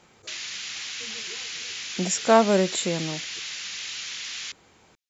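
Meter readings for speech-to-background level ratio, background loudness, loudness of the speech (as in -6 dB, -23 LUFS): 9.0 dB, -32.0 LUFS, -23.0 LUFS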